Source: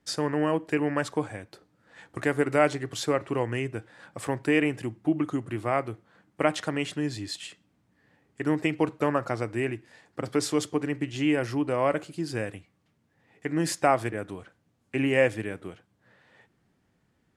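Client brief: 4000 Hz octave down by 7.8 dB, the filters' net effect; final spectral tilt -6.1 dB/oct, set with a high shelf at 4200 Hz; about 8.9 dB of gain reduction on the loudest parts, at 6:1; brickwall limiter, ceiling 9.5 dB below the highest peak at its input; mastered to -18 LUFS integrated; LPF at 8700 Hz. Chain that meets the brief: LPF 8700 Hz; bell 4000 Hz -7.5 dB; high shelf 4200 Hz -5.5 dB; compressor 6:1, threshold -27 dBFS; gain +17.5 dB; limiter -4.5 dBFS

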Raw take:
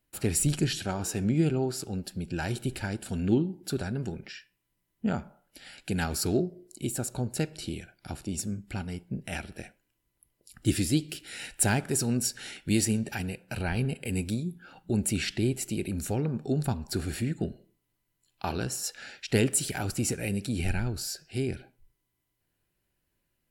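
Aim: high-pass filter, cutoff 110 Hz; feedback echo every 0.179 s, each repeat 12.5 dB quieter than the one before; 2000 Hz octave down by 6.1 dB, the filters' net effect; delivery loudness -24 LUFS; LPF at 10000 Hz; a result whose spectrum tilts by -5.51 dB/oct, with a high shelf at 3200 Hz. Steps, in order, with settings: HPF 110 Hz; LPF 10000 Hz; bell 2000 Hz -7 dB; high shelf 3200 Hz -4 dB; feedback echo 0.179 s, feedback 24%, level -12.5 dB; gain +8 dB

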